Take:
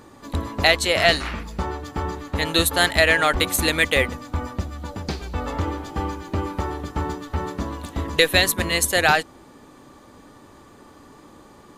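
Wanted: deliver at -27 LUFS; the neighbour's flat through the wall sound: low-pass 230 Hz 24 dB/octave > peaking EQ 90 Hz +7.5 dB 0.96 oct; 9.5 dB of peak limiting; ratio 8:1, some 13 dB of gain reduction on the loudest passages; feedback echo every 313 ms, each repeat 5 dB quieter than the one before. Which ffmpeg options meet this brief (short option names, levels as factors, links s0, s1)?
-af "acompressor=threshold=0.0562:ratio=8,alimiter=limit=0.106:level=0:latency=1,lowpass=f=230:w=0.5412,lowpass=f=230:w=1.3066,equalizer=f=90:t=o:w=0.96:g=7.5,aecho=1:1:313|626|939|1252|1565|1878|2191:0.562|0.315|0.176|0.0988|0.0553|0.031|0.0173,volume=1.58"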